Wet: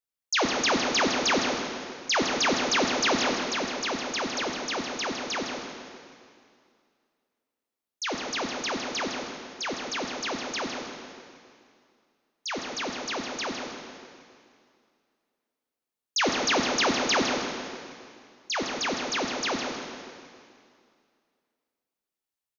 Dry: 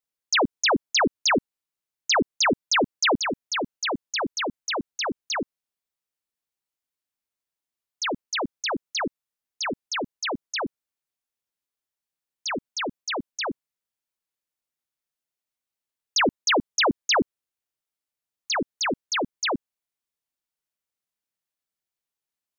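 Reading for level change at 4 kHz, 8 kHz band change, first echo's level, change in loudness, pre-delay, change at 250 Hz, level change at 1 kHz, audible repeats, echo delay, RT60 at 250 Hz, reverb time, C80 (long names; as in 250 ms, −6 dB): −1.5 dB, can't be measured, −7.5 dB, −2.0 dB, 5 ms, −1.5 dB, −1.5 dB, 1, 159 ms, 2.4 s, 2.3 s, 2.0 dB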